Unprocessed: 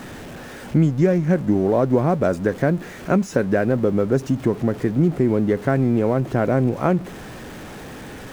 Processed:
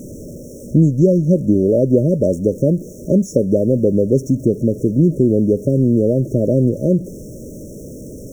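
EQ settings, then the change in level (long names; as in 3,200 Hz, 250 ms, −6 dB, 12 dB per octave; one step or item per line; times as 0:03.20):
linear-phase brick-wall band-stop 640–5,400 Hz
+4.5 dB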